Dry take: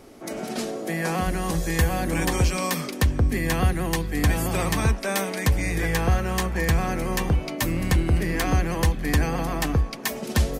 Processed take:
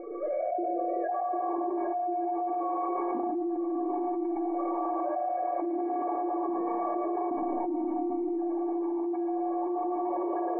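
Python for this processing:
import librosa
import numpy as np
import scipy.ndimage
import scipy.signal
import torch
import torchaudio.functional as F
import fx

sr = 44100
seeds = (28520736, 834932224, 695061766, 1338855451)

y = fx.sine_speech(x, sr)
y = fx.formant_cascade(y, sr, vowel='u')
y = fx.band_shelf(y, sr, hz=900.0, db=14.0, octaves=1.7)
y = fx.stiff_resonator(y, sr, f0_hz=340.0, decay_s=0.41, stiffness=0.03)
y = fx.echo_multitap(y, sr, ms=(112, 241), db=(-4.0, -17.0))
y = fx.rev_schroeder(y, sr, rt60_s=2.3, comb_ms=25, drr_db=-1.0)
y = fx.env_flatten(y, sr, amount_pct=100)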